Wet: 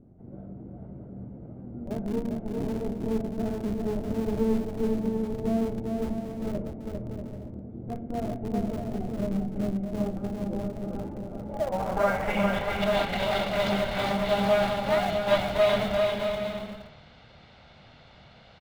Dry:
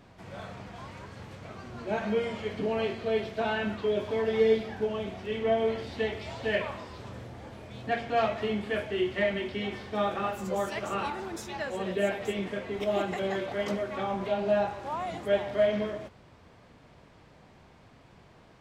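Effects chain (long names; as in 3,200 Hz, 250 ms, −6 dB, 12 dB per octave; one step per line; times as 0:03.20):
lower of the sound and its delayed copy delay 1.4 ms
hum removal 95.51 Hz, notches 10
low-pass filter sweep 320 Hz → 3,900 Hz, 0:11.24–0:12.66
in parallel at −6.5 dB: comparator with hysteresis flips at −31.5 dBFS
on the sum: bouncing-ball delay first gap 400 ms, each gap 0.6×, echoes 5
on a send at −18.5 dB: convolution reverb RT60 0.15 s, pre-delay 19 ms
on the sum: level +1.5 dB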